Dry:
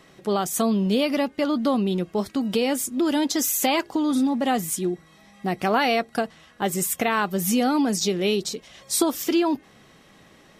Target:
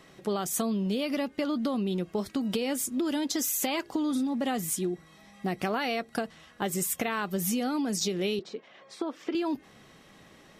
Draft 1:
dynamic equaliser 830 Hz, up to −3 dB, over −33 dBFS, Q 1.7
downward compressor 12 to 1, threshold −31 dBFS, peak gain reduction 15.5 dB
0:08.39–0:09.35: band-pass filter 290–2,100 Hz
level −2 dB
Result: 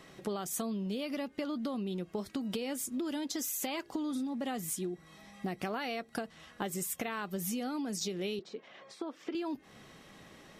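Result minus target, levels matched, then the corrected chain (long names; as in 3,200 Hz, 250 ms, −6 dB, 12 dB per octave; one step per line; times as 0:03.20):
downward compressor: peak gain reduction +7 dB
dynamic equaliser 830 Hz, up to −3 dB, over −33 dBFS, Q 1.7
downward compressor 12 to 1, threshold −23.5 dBFS, peak gain reduction 8.5 dB
0:08.39–0:09.35: band-pass filter 290–2,100 Hz
level −2 dB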